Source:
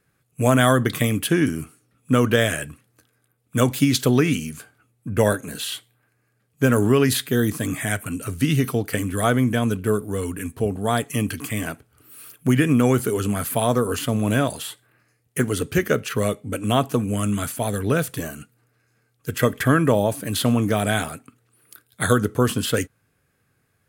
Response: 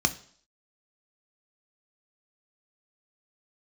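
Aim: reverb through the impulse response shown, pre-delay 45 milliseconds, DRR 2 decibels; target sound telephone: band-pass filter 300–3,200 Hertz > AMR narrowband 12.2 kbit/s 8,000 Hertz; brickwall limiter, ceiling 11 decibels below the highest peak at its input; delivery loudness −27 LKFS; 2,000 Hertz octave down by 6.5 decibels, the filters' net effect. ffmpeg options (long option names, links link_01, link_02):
-filter_complex "[0:a]equalizer=frequency=2000:width_type=o:gain=-8.5,alimiter=limit=-13.5dB:level=0:latency=1,asplit=2[link_01][link_02];[1:a]atrim=start_sample=2205,adelay=45[link_03];[link_02][link_03]afir=irnorm=-1:irlink=0,volume=-12dB[link_04];[link_01][link_04]amix=inputs=2:normalize=0,highpass=300,lowpass=3200" -ar 8000 -c:a libopencore_amrnb -b:a 12200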